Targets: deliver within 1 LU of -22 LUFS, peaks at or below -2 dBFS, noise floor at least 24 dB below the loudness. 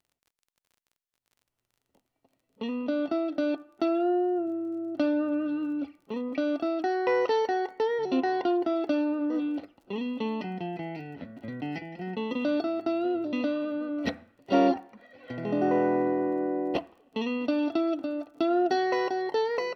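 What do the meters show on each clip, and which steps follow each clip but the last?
tick rate 28 per s; loudness -29.0 LUFS; peak level -10.0 dBFS; loudness target -22.0 LUFS
-> de-click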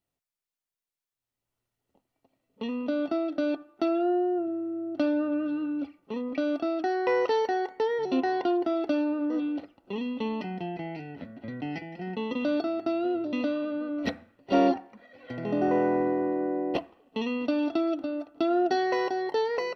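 tick rate 0.051 per s; loudness -29.0 LUFS; peak level -10.0 dBFS; loudness target -22.0 LUFS
-> trim +7 dB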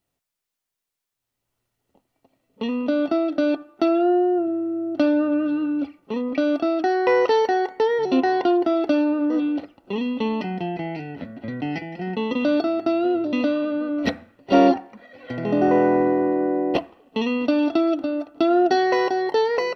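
loudness -22.0 LUFS; peak level -3.0 dBFS; noise floor -83 dBFS

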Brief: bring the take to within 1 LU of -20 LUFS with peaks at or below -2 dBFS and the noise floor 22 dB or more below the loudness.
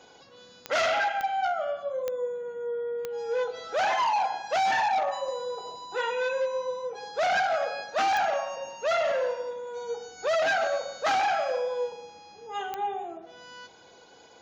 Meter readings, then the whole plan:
clicks found 6; loudness -28.5 LUFS; peak level -13.0 dBFS; loudness target -20.0 LUFS
-> de-click; trim +8.5 dB

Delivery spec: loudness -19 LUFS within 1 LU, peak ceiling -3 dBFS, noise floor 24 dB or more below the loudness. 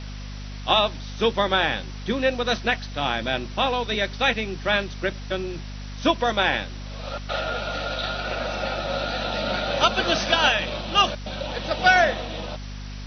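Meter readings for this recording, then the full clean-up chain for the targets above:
hum 50 Hz; highest harmonic 250 Hz; hum level -33 dBFS; noise floor -35 dBFS; noise floor target -48 dBFS; loudness -23.5 LUFS; peak level -4.0 dBFS; loudness target -19.0 LUFS
-> hum notches 50/100/150/200/250 Hz; noise reduction 13 dB, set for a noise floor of -35 dBFS; trim +4.5 dB; peak limiter -3 dBFS

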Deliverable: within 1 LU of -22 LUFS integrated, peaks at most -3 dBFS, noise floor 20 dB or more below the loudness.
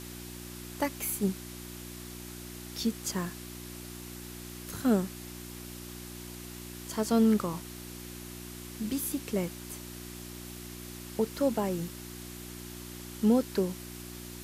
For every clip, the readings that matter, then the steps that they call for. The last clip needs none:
hum 60 Hz; highest harmonic 360 Hz; hum level -42 dBFS; noise floor -44 dBFS; noise floor target -54 dBFS; loudness -34.0 LUFS; peak level -14.5 dBFS; loudness target -22.0 LUFS
-> de-hum 60 Hz, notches 6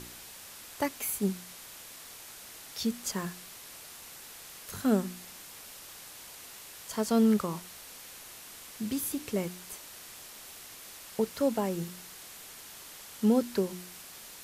hum not found; noise floor -48 dBFS; noise floor target -52 dBFS
-> noise print and reduce 6 dB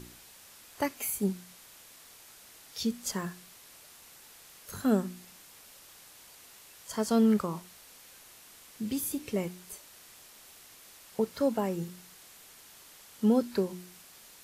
noise floor -54 dBFS; loudness -31.5 LUFS; peak level -14.5 dBFS; loudness target -22.0 LUFS
-> trim +9.5 dB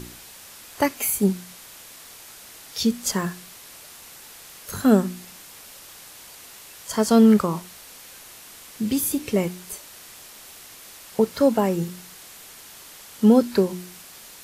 loudness -22.0 LUFS; peak level -5.0 dBFS; noise floor -45 dBFS

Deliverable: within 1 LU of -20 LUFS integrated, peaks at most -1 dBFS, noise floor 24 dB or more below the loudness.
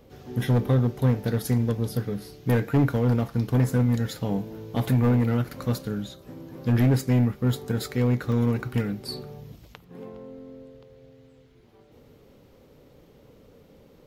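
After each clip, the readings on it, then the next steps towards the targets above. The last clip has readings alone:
clipped samples 1.8%; clipping level -15.0 dBFS; dropouts 2; longest dropout 1.4 ms; loudness -25.0 LUFS; peak level -15.0 dBFS; loudness target -20.0 LUFS
-> clip repair -15 dBFS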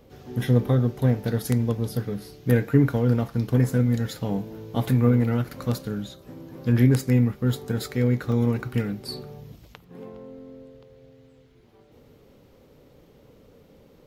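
clipped samples 0.0%; dropouts 2; longest dropout 1.4 ms
-> interpolate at 6.58/8.32 s, 1.4 ms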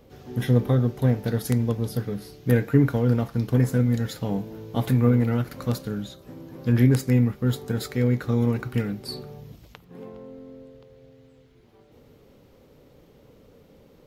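dropouts 0; loudness -24.0 LUFS; peak level -6.0 dBFS; loudness target -20.0 LUFS
-> trim +4 dB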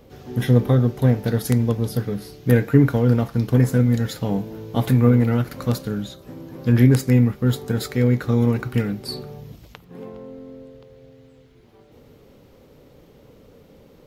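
loudness -20.0 LUFS; peak level -2.0 dBFS; noise floor -51 dBFS

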